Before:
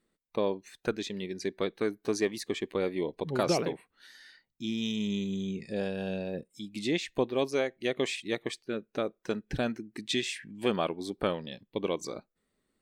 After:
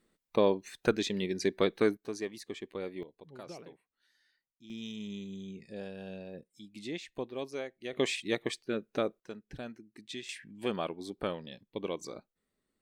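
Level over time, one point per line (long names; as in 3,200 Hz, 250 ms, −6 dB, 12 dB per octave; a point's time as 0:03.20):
+3.5 dB
from 0:01.97 −8.5 dB
from 0:03.03 −19 dB
from 0:04.70 −9.5 dB
from 0:07.93 +0.5 dB
from 0:09.20 −12 dB
from 0:10.29 −5 dB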